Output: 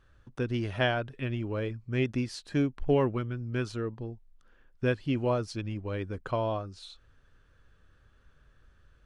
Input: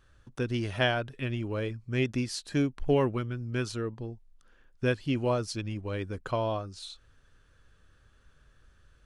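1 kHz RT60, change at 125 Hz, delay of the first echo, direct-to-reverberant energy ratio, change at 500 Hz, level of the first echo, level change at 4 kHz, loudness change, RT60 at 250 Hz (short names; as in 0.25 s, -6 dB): none, 0.0 dB, none, none, 0.0 dB, none, -3.5 dB, -0.5 dB, none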